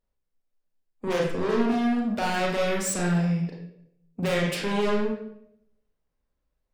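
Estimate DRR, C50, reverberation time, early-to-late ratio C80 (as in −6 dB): −2.5 dB, 2.0 dB, 0.75 s, 6.0 dB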